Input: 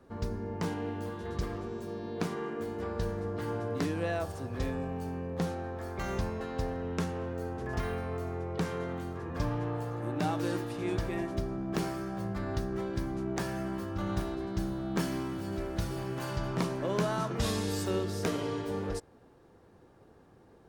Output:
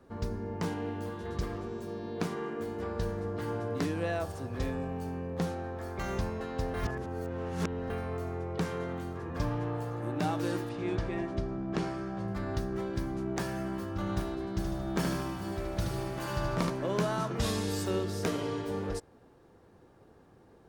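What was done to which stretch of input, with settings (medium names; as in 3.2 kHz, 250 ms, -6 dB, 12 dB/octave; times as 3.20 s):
6.74–7.90 s: reverse
10.69–12.28 s: distance through air 80 m
14.53–16.70 s: feedback delay 75 ms, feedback 54%, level -4.5 dB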